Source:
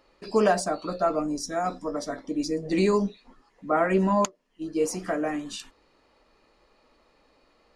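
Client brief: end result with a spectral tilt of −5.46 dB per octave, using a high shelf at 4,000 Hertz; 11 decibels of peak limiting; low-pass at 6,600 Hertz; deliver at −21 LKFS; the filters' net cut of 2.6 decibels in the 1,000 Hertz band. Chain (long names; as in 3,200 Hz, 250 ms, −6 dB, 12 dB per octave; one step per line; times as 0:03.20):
low-pass filter 6,600 Hz
parametric band 1,000 Hz −3.5 dB
high-shelf EQ 4,000 Hz −3.5 dB
level +11.5 dB
brickwall limiter −11 dBFS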